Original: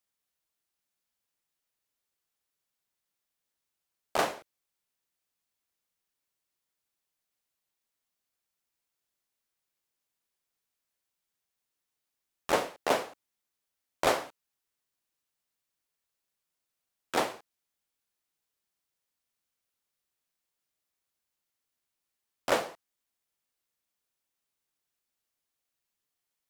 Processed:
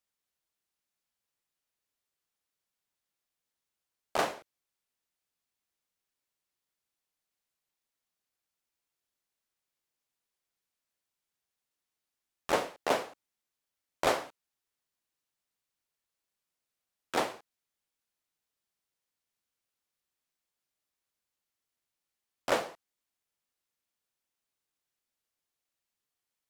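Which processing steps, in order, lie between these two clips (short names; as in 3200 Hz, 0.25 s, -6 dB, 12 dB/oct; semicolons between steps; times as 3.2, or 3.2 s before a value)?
high shelf 11000 Hz -4 dB; gain -1.5 dB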